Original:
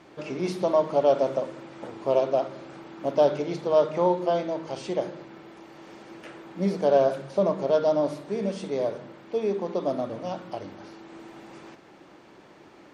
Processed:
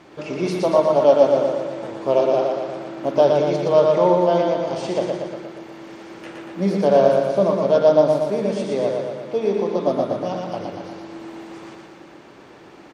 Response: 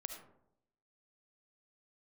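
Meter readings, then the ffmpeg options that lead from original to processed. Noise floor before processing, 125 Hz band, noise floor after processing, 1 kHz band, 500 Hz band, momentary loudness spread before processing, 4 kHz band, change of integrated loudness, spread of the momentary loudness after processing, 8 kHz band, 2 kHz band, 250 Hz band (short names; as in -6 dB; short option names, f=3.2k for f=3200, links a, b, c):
-52 dBFS, +7.5 dB, -45 dBFS, +6.5 dB, +7.5 dB, 22 LU, +7.0 dB, +7.0 dB, 21 LU, n/a, +7.0 dB, +7.0 dB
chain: -af "aecho=1:1:118|236|354|472|590|708|826|944:0.668|0.394|0.233|0.137|0.081|0.0478|0.0282|0.0166,volume=4.5dB"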